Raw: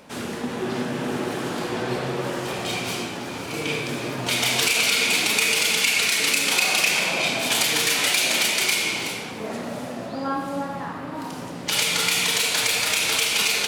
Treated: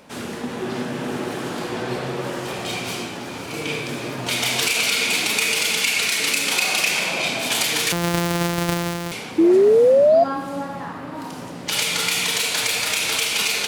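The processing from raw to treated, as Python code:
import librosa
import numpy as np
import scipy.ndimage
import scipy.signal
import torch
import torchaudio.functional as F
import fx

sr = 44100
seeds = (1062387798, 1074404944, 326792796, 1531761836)

y = fx.sample_sort(x, sr, block=256, at=(7.92, 9.12))
y = fx.spec_paint(y, sr, seeds[0], shape='rise', start_s=9.38, length_s=0.86, low_hz=320.0, high_hz=700.0, level_db=-13.0)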